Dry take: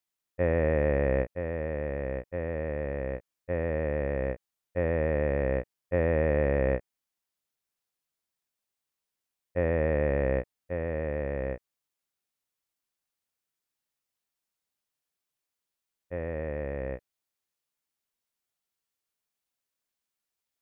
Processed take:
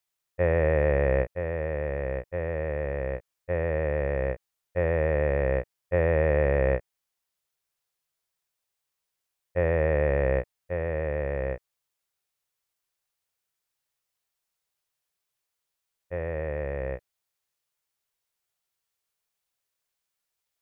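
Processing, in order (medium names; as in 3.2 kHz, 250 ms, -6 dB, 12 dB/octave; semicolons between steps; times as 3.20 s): peaking EQ 250 Hz -14.5 dB 0.46 oct; trim +3.5 dB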